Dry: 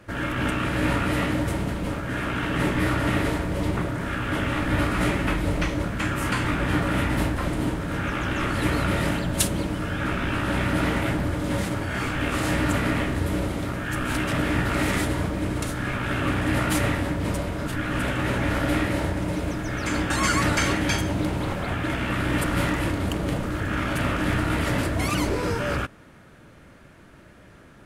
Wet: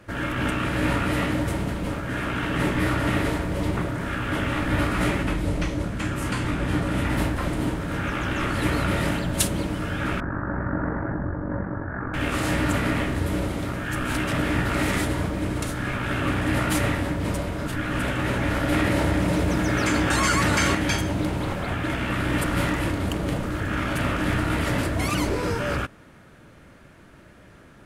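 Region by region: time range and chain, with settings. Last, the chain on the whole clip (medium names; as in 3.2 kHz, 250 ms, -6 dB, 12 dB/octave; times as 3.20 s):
5.23–7.05 s: low-pass 12 kHz + peaking EQ 1.6 kHz -4.5 dB 2.6 oct
10.20–12.14 s: Chebyshev low-pass 1.7 kHz, order 5 + AM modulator 47 Hz, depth 35%
18.72–20.75 s: high-pass 42 Hz + delay 351 ms -9.5 dB + level flattener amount 70%
whole clip: none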